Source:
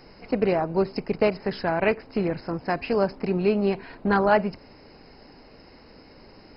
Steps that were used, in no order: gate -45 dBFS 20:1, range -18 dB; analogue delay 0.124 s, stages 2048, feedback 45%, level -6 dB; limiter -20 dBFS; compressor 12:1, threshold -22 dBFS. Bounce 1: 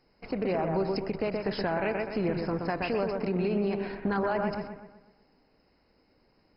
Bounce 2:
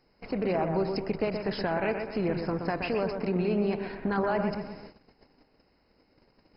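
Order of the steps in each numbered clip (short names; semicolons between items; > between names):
gate > compressor > analogue delay > limiter; limiter > compressor > analogue delay > gate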